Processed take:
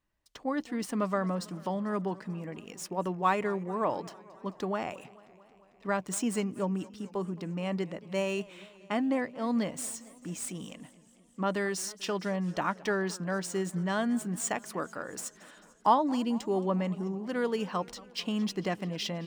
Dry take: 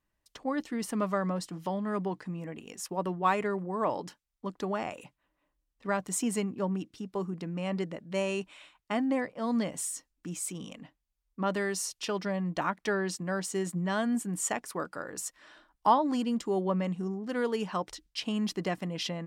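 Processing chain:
running median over 3 samples
feedback echo with a swinging delay time 222 ms, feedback 70%, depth 156 cents, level −21.5 dB

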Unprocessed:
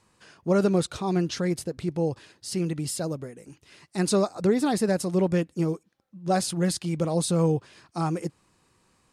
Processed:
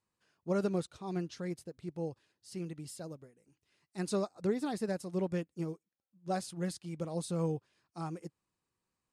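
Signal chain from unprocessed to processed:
expander for the loud parts 1.5 to 1, over −44 dBFS
level −9 dB

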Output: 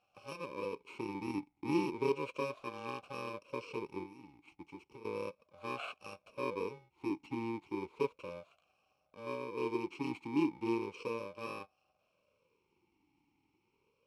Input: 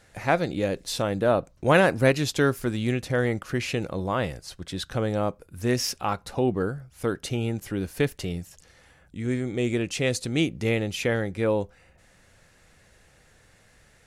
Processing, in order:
samples in bit-reversed order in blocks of 64 samples
0:04.03–0:05.05: downward compressor 12 to 1, threshold −34 dBFS, peak gain reduction 13.5 dB
tube saturation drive 15 dB, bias 0.65
high-frequency loss of the air 50 metres
formant filter swept between two vowels a-u 0.34 Hz
level +6 dB

